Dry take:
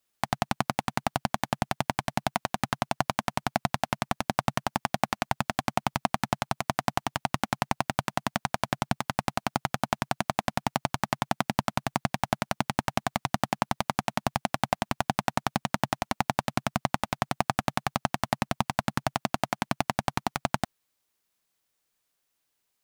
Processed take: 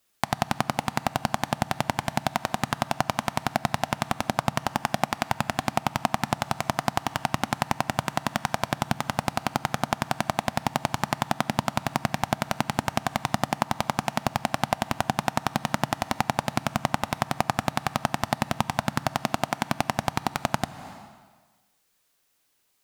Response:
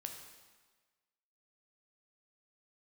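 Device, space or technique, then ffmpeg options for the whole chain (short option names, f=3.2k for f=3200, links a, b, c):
ducked reverb: -filter_complex "[0:a]asplit=3[a][b][c];[1:a]atrim=start_sample=2205[d];[b][d]afir=irnorm=-1:irlink=0[e];[c]apad=whole_len=1007122[f];[e][f]sidechaincompress=threshold=-33dB:ratio=10:attack=9.1:release=258,volume=6.5dB[g];[a][g]amix=inputs=2:normalize=0"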